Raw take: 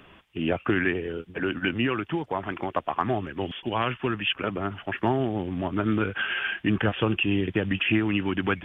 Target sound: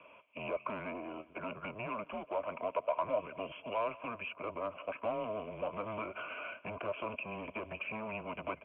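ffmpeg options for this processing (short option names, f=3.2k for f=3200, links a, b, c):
-filter_complex "[0:a]acrossover=split=130|1400[a][b][c];[b]aeval=exprs='(tanh(44.7*val(0)+0.75)-tanh(0.75))/44.7':c=same[d];[c]acompressor=threshold=-40dB:ratio=6[e];[a][d][e]amix=inputs=3:normalize=0,asplit=3[f][g][h];[f]bandpass=f=730:t=q:w=8,volume=0dB[i];[g]bandpass=f=1.09k:t=q:w=8,volume=-6dB[j];[h]bandpass=f=2.44k:t=q:w=8,volume=-9dB[k];[i][j][k]amix=inputs=3:normalize=0,aecho=1:1:183|366|549:0.0794|0.0373|0.0175,highpass=f=200:t=q:w=0.5412,highpass=f=200:t=q:w=1.307,lowpass=f=3.2k:t=q:w=0.5176,lowpass=f=3.2k:t=q:w=0.7071,lowpass=f=3.2k:t=q:w=1.932,afreqshift=-110,volume=9.5dB"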